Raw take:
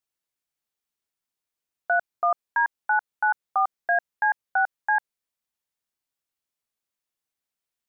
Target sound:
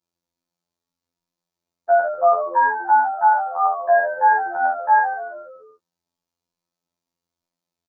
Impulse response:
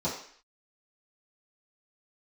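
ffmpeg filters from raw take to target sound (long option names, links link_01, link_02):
-filter_complex "[1:a]atrim=start_sample=2205,atrim=end_sample=3969[link_01];[0:a][link_01]afir=irnorm=-1:irlink=0,afftfilt=real='hypot(re,im)*cos(PI*b)':imag='0':win_size=2048:overlap=0.75,asplit=6[link_02][link_03][link_04][link_05][link_06][link_07];[link_03]adelay=143,afreqshift=-85,volume=-11dB[link_08];[link_04]adelay=286,afreqshift=-170,volume=-16.8dB[link_09];[link_05]adelay=429,afreqshift=-255,volume=-22.7dB[link_10];[link_06]adelay=572,afreqshift=-340,volume=-28.5dB[link_11];[link_07]adelay=715,afreqshift=-425,volume=-34.4dB[link_12];[link_02][link_08][link_09][link_10][link_11][link_12]amix=inputs=6:normalize=0"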